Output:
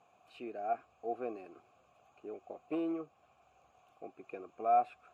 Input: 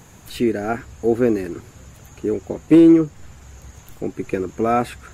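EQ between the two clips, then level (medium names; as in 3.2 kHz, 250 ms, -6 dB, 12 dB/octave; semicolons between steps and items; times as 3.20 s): vowel filter a; -5.5 dB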